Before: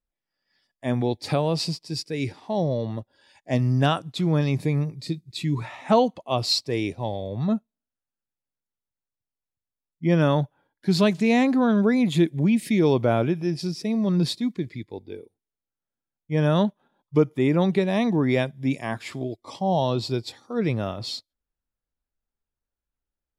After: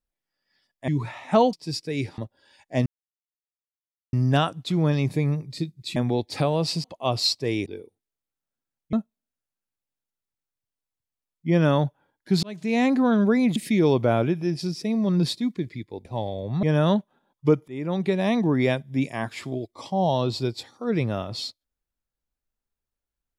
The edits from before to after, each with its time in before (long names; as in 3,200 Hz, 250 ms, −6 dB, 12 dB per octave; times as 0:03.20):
0:00.88–0:01.76: swap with 0:05.45–0:06.10
0:02.41–0:02.94: remove
0:03.62: splice in silence 1.27 s
0:06.92–0:07.50: swap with 0:15.05–0:16.32
0:11.00–0:11.46: fade in
0:12.13–0:12.56: remove
0:17.37–0:17.89: fade in, from −20 dB